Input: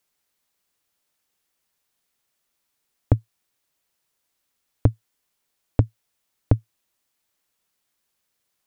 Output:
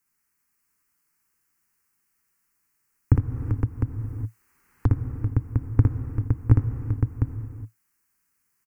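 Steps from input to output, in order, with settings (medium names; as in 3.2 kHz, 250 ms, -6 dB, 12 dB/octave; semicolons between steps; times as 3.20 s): static phaser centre 1.5 kHz, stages 4; multi-tap echo 59/80/391/513/705 ms -3.5/-17/-10/-5/-6 dB; gated-style reverb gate 440 ms flat, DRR 8.5 dB; 3.14–4.90 s: three bands compressed up and down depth 70%; trim +1 dB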